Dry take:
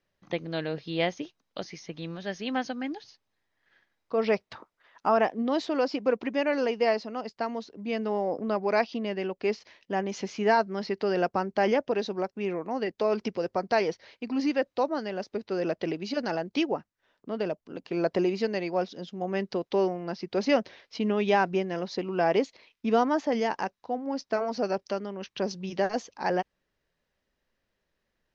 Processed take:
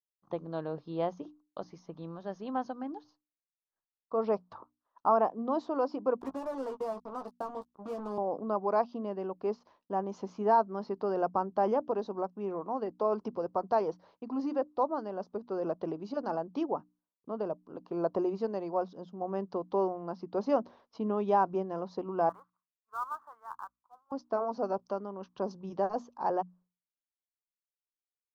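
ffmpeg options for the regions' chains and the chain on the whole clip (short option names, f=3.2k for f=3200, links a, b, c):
-filter_complex "[0:a]asettb=1/sr,asplit=3[a][b][c];[a]atrim=end=6.214[d];[b]atrim=start=6.21:end=8.18,asetpts=PTS-STARTPTS,afade=t=in:d=0.004:c=qsin,afade=t=out:st=1.966:d=0.004:c=qsin,acrossover=split=260|2200[e][f][g];[e]acompressor=threshold=-40dB:ratio=4[h];[f]acompressor=threshold=-33dB:ratio=4[i];[g]acompressor=threshold=-48dB:ratio=4[j];[h][i][j]amix=inputs=3:normalize=0,acrusher=bits=5:mix=0:aa=0.5,asplit=2[k][l];[l]adelay=15,volume=-7dB[m];[k][m]amix=inputs=2:normalize=0,atrim=end_sample=86877[n];[c]atrim=start=8.176[o];[d][n]acrossfade=d=0.004:c1=hsin:c2=qsin[p];[p][o]acrossfade=d=0.004:c1=qsin:c2=hsin,asettb=1/sr,asplit=3[q][r][s];[q]atrim=end=22.294[t];[r]atrim=start=22.29:end=24.12,asetpts=PTS-STARTPTS,afade=t=in:d=0.004:c=qsin,afade=t=out:st=1.826:d=0.004:c=qsin,asuperpass=centerf=1300:order=4:qfactor=2.9,acrusher=bits=2:mode=log:mix=0:aa=0.000001[u];[s]atrim=start=24.116[v];[t][u]acrossfade=d=0.004:c1=hsin:c2=qsin[w];[w][v]acrossfade=d=0.004:c1=qsin:c2=hsin,agate=range=-33dB:threshold=-50dB:ratio=3:detection=peak,highshelf=f=1.5k:t=q:w=3:g=-11,bandreject=f=60:t=h:w=6,bandreject=f=120:t=h:w=6,bandreject=f=180:t=h:w=6,bandreject=f=240:t=h:w=6,bandreject=f=300:t=h:w=6,volume=-5.5dB"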